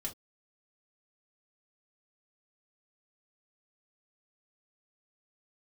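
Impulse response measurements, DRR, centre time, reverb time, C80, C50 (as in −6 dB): −1.5 dB, 11 ms, non-exponential decay, 31.5 dB, 14.5 dB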